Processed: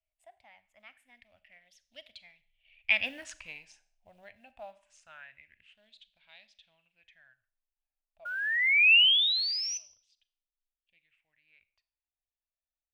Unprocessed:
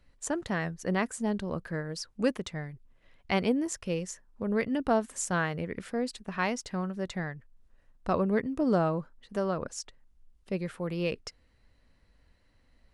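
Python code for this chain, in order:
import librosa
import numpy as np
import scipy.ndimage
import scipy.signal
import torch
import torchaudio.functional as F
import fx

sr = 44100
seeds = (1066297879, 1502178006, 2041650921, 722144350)

y = fx.doppler_pass(x, sr, speed_mps=43, closest_m=6.7, pass_at_s=3.18)
y = fx.spec_paint(y, sr, seeds[0], shape='rise', start_s=8.25, length_s=1.53, low_hz=1400.0, high_hz=6100.0, level_db=-28.0)
y = fx.quant_float(y, sr, bits=4)
y = fx.curve_eq(y, sr, hz=(100.0, 150.0, 250.0, 430.0, 620.0, 1200.0, 1700.0, 2700.0, 4300.0, 6400.0), db=(0, -19, -13, -25, 1, -12, 1, 14, 2, -4))
y = fx.rev_schroeder(y, sr, rt60_s=0.51, comb_ms=30, drr_db=15.0)
y = fx.bell_lfo(y, sr, hz=0.24, low_hz=670.0, high_hz=3900.0, db=15)
y = F.gain(torch.from_numpy(y), -5.0).numpy()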